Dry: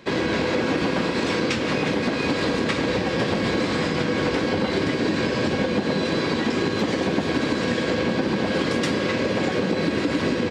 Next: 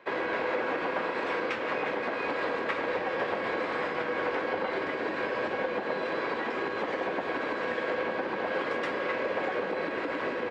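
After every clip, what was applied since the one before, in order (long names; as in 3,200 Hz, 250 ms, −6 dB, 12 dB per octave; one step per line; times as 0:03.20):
three-way crossover with the lows and the highs turned down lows −21 dB, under 440 Hz, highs −21 dB, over 2,400 Hz
level −2 dB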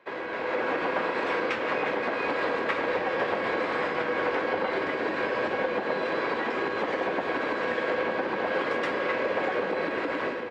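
automatic gain control gain up to 7 dB
level −4 dB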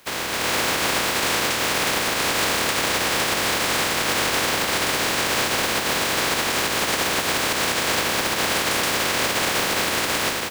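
compressing power law on the bin magnitudes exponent 0.24
brickwall limiter −19 dBFS, peak gain reduction 5.5 dB
level +7.5 dB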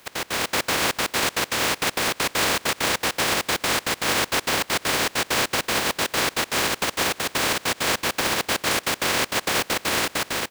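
gate pattern "x.x.xx.x.xx" 198 BPM −24 dB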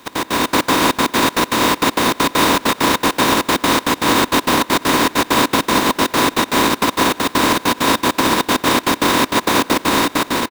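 each half-wave held at its own peak
hollow resonant body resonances 270/1,000/3,700 Hz, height 11 dB, ringing for 25 ms
far-end echo of a speakerphone 90 ms, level −24 dB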